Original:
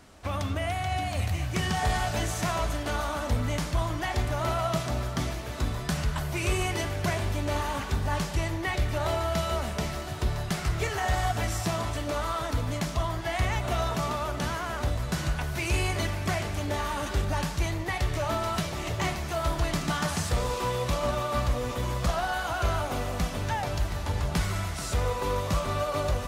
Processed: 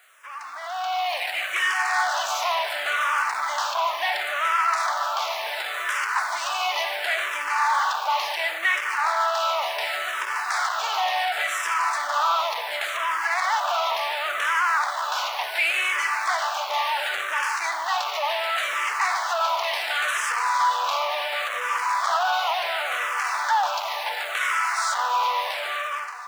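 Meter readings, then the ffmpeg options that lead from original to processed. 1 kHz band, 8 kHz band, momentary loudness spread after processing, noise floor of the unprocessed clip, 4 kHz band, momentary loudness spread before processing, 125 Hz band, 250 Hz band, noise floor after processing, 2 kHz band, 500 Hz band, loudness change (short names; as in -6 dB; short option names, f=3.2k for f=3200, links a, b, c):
+9.5 dB, +2.5 dB, 5 LU, -35 dBFS, +8.0 dB, 3 LU, under -40 dB, under -25 dB, -31 dBFS, +11.0 dB, -1.0 dB, +5.5 dB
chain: -filter_complex "[0:a]asplit=2[a][b];[b]highpass=f=720:p=1,volume=17dB,asoftclip=type=tanh:threshold=-17.5dB[c];[a][c]amix=inputs=2:normalize=0,lowpass=f=1.1k:p=1,volume=-6dB,acrusher=bits=8:mix=0:aa=0.000001,asoftclip=type=tanh:threshold=-28dB,dynaudnorm=f=330:g=5:m=15dB,highpass=f=860:w=0.5412,highpass=f=860:w=1.3066,asplit=2[d][e];[e]afreqshift=-0.7[f];[d][f]amix=inputs=2:normalize=1"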